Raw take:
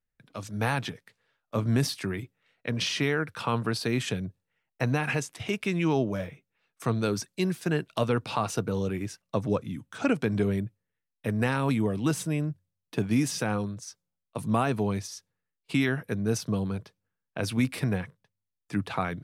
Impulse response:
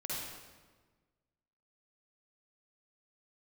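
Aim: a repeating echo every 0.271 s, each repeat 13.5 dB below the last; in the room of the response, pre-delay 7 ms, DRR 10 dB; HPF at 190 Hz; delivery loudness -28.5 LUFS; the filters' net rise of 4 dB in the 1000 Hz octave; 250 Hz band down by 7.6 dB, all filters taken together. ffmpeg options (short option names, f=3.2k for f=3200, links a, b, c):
-filter_complex "[0:a]highpass=190,equalizer=f=250:t=o:g=-8,equalizer=f=1k:t=o:g=5.5,aecho=1:1:271|542:0.211|0.0444,asplit=2[a][b];[1:a]atrim=start_sample=2205,adelay=7[c];[b][c]afir=irnorm=-1:irlink=0,volume=-12.5dB[d];[a][d]amix=inputs=2:normalize=0,volume=2.5dB"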